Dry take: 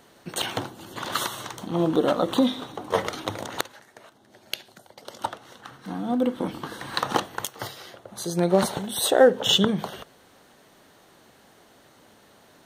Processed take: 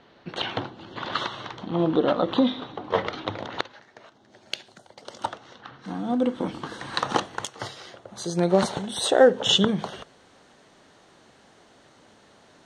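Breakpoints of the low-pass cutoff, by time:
low-pass 24 dB/octave
3.50 s 4.3 kHz
4.54 s 8.1 kHz
5.29 s 8.1 kHz
5.74 s 4.2 kHz
5.88 s 8.1 kHz

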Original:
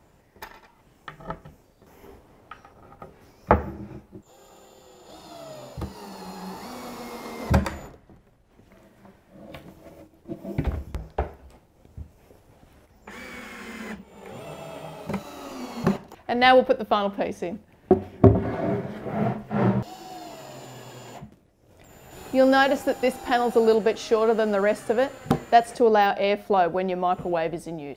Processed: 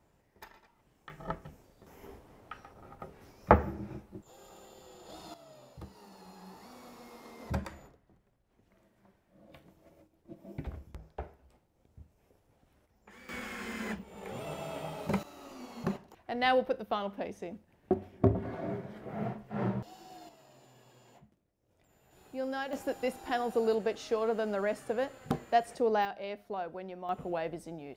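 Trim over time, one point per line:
-11 dB
from 1.10 s -3 dB
from 5.34 s -14 dB
from 13.29 s -1.5 dB
from 15.23 s -11 dB
from 20.29 s -18 dB
from 22.73 s -10 dB
from 26.05 s -17 dB
from 27.09 s -9.5 dB

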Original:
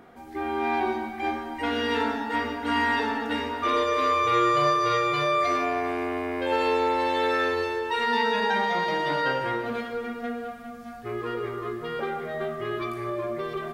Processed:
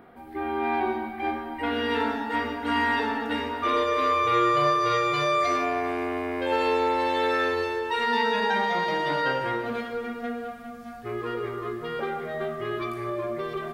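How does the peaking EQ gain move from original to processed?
peaking EQ 6.4 kHz 0.87 oct
1.64 s -14.5 dB
2.12 s -4.5 dB
4.67 s -4.5 dB
5.34 s +5.5 dB
5.73 s -1 dB

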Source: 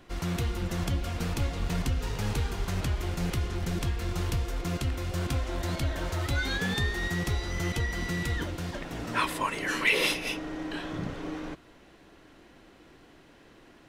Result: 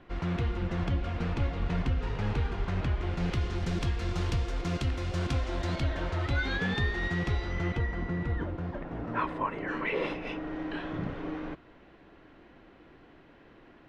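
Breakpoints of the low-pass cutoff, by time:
3.02 s 2.6 kHz
3.53 s 5.5 kHz
5.52 s 5.5 kHz
6.11 s 3.2 kHz
7.39 s 3.2 kHz
8.08 s 1.3 kHz
10.10 s 1.3 kHz
10.57 s 2.6 kHz

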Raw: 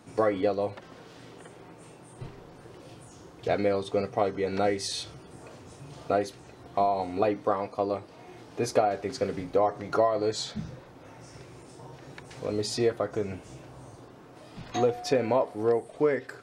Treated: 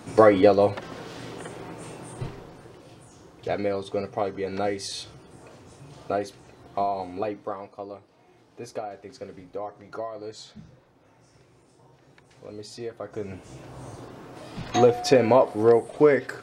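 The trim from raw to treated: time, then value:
2.09 s +9.5 dB
2.83 s -1 dB
6.91 s -1 dB
7.95 s -10 dB
12.88 s -10 dB
13.19 s -3 dB
13.89 s +7 dB

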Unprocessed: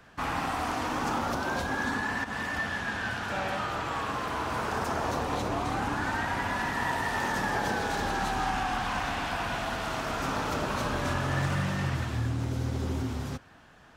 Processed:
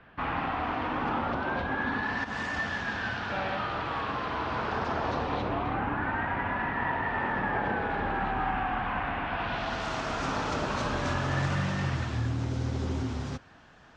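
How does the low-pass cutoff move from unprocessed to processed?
low-pass 24 dB/octave
1.86 s 3.2 kHz
2.41 s 7.2 kHz
3.53 s 4.4 kHz
5.25 s 4.4 kHz
5.83 s 2.6 kHz
9.25 s 2.6 kHz
9.84 s 7 kHz

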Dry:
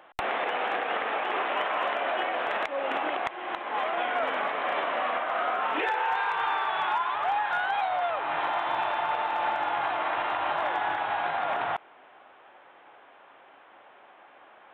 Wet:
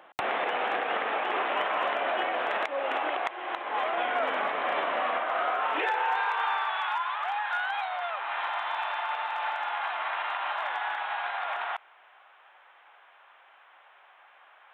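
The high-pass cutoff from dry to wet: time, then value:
2.22 s 120 Hz
2.88 s 340 Hz
3.52 s 340 Hz
4.75 s 99 Hz
5.55 s 340 Hz
6.14 s 340 Hz
6.82 s 970 Hz

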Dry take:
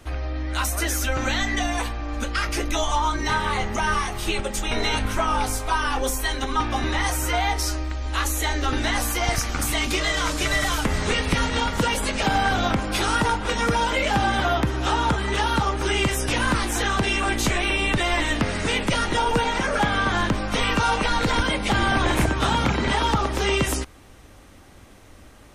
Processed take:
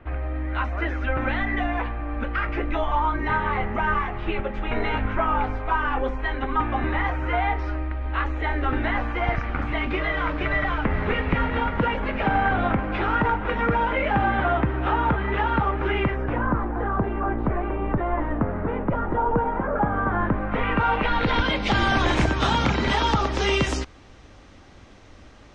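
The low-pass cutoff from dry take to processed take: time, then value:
low-pass 24 dB/octave
15.98 s 2.3 kHz
16.51 s 1.3 kHz
19.91 s 1.3 kHz
20.95 s 2.6 kHz
21.84 s 6.2 kHz

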